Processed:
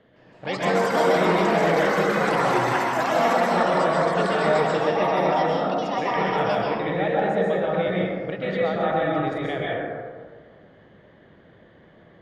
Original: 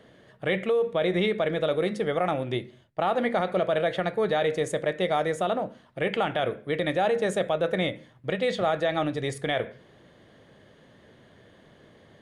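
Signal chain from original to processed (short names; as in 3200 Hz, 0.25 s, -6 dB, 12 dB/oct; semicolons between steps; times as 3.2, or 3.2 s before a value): LPF 3200 Hz 12 dB/oct; echoes that change speed 0.162 s, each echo +7 st, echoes 3; plate-style reverb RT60 1.6 s, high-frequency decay 0.35×, pre-delay 0.115 s, DRR -5.5 dB; gain -4 dB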